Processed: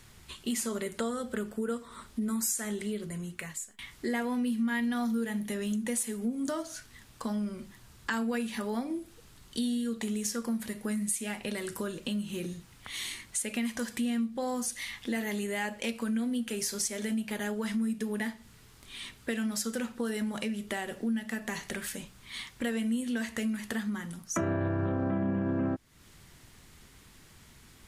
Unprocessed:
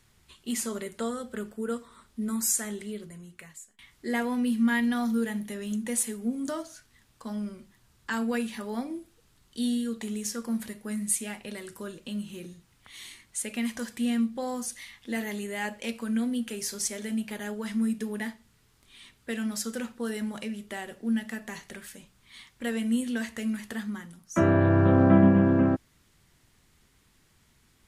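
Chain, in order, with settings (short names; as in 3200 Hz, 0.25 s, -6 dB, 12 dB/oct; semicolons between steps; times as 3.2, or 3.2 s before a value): limiter -16.5 dBFS, peak gain reduction 9 dB; compressor 3:1, threshold -41 dBFS, peak gain reduction 15.5 dB; gain +8.5 dB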